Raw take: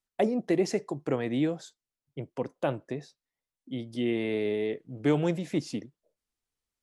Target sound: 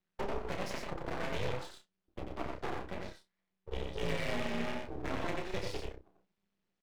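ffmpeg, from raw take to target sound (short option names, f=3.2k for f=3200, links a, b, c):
-filter_complex "[0:a]deesser=0.75,lowpass=3.2k,acrossover=split=640[a][b];[a]acompressor=threshold=-39dB:ratio=6[c];[b]alimiter=level_in=5.5dB:limit=-24dB:level=0:latency=1:release=169,volume=-5.5dB[d];[c][d]amix=inputs=2:normalize=0,asoftclip=type=tanh:threshold=-36dB,flanger=delay=7.9:depth=3.4:regen=-19:speed=1.2:shape=sinusoidal,asplit=2[e][f];[f]asetrate=37084,aresample=44100,atempo=1.18921,volume=-10dB[g];[e][g]amix=inputs=2:normalize=0,aeval=exprs='val(0)*sin(2*PI*190*n/s)':c=same,aecho=1:1:90.38|122.4:0.631|0.282,aeval=exprs='max(val(0),0)':c=same,asplit=2[h][i];[i]adelay=30,volume=-7dB[j];[h][j]amix=inputs=2:normalize=0,volume=12.5dB"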